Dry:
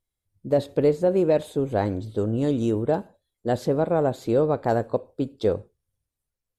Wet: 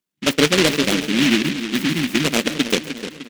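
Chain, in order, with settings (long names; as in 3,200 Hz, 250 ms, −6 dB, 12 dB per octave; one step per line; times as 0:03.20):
Chebyshev band-pass filter 150–7,500 Hz, order 5
gain on a spectral selection 0:01.98–0:04.47, 370–1,200 Hz −28 dB
octave-band graphic EQ 250/1,000/2,000/4,000 Hz +7/−9/+7/+7 dB
tempo change 2×
echo with a time of its own for lows and highs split 540 Hz, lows 303 ms, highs 134 ms, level −10 dB
short delay modulated by noise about 2,500 Hz, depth 0.3 ms
level +4 dB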